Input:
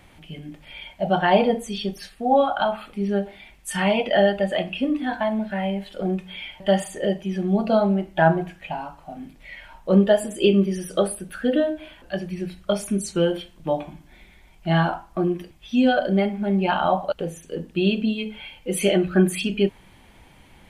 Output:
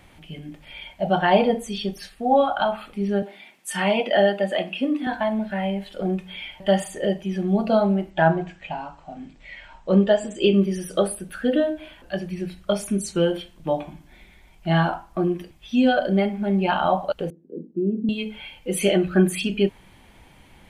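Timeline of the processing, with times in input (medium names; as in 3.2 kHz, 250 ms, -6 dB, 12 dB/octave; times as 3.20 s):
3.22–5.07 s: high-pass 190 Hz 24 dB/octave
8.10–10.53 s: elliptic low-pass 7.9 kHz
17.30–18.09 s: Butterworth band-pass 280 Hz, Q 1.4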